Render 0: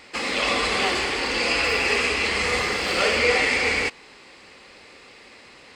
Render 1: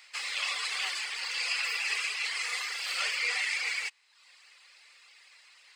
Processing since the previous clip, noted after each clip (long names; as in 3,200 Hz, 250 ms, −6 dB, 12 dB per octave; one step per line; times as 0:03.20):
high-pass filter 1,200 Hz 12 dB per octave
reverb reduction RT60 0.75 s
spectral tilt +2 dB per octave
level −9 dB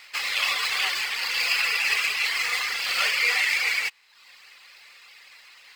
running median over 5 samples
level +8.5 dB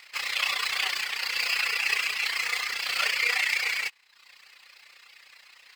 amplitude modulation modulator 30 Hz, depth 50%